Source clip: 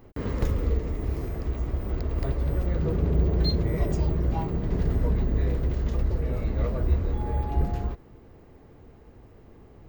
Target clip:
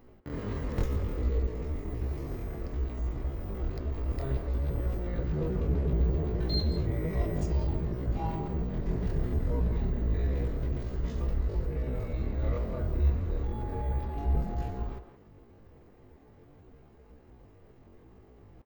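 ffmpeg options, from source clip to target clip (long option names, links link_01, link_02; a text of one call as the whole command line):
ffmpeg -i in.wav -filter_complex "[0:a]atempo=0.53,flanger=delay=4:depth=9.1:regen=-76:speed=0.35:shape=triangular,asplit=2[link_01][link_02];[link_02]adelay=170,highpass=300,lowpass=3400,asoftclip=type=hard:threshold=-30.5dB,volume=-9dB[link_03];[link_01][link_03]amix=inputs=2:normalize=0" out.wav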